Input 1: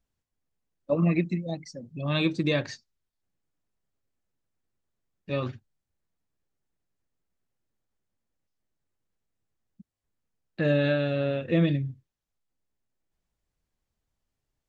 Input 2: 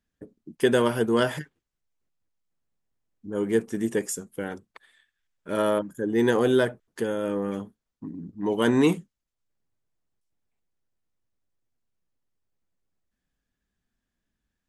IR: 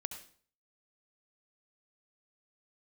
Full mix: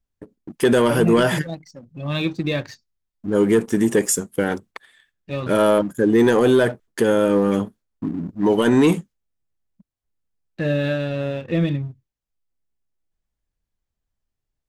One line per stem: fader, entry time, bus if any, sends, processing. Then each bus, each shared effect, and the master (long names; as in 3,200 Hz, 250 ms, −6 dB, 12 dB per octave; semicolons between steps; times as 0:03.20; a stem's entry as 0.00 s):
−2.0 dB, 0.00 s, no send, low-shelf EQ 60 Hz +9 dB
+0.5 dB, 0.00 s, no send, automatic gain control gain up to 8 dB; noise gate with hold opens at −44 dBFS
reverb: not used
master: leveller curve on the samples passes 1; brickwall limiter −8.5 dBFS, peak gain reduction 6.5 dB